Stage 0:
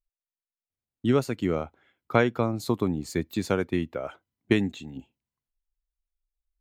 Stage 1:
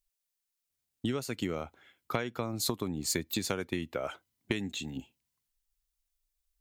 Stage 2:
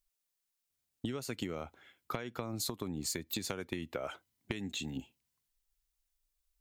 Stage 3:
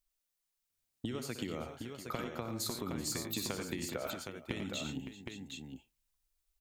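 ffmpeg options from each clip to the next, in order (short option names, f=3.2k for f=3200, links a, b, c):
-af "acompressor=threshold=-29dB:ratio=12,highshelf=f=2.5k:g=11.5"
-af "acompressor=threshold=-33dB:ratio=10"
-af "aecho=1:1:63|93|113|384|562|765:0.251|0.355|0.282|0.133|0.237|0.501,volume=-1.5dB"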